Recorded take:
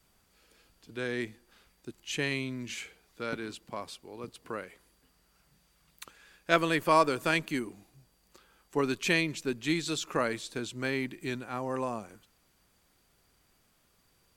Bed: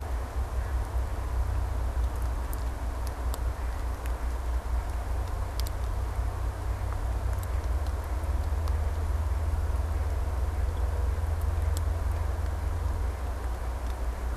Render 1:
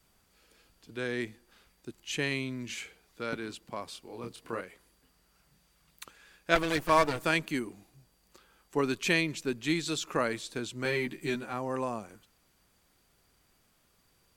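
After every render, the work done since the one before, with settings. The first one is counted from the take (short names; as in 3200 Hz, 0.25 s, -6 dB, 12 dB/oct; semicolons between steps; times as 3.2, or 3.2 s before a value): 3.92–4.61 doubler 26 ms -3.5 dB; 6.55–7.24 minimum comb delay 6.4 ms; 10.84–11.53 doubler 13 ms -2 dB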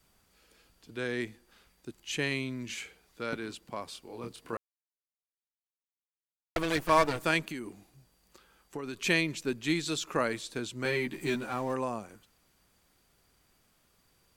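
4.57–6.56 mute; 7.49–9.04 compressor, threshold -34 dBFS; 11.13–11.74 G.711 law mismatch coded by mu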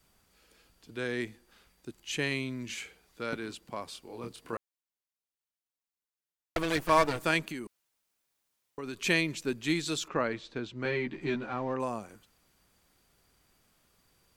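7.67–8.78 room tone; 10.08–11.8 air absorption 190 m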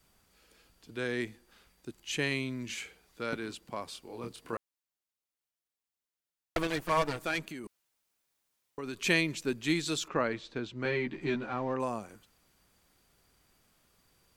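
6.67–7.64 tube stage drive 19 dB, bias 0.65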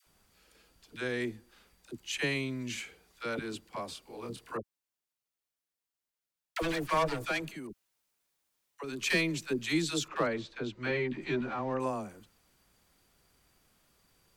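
overloaded stage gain 18.5 dB; dispersion lows, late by 63 ms, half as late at 590 Hz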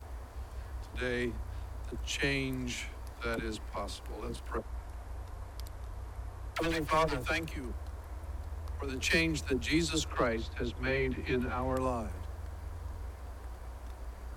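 add bed -12 dB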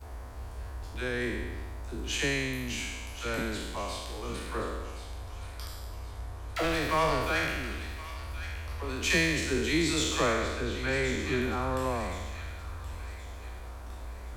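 spectral trails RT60 1.34 s; thin delay 1.073 s, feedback 41%, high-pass 1500 Hz, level -11 dB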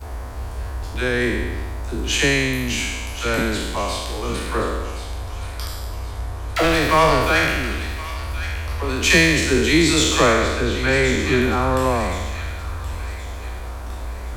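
gain +11.5 dB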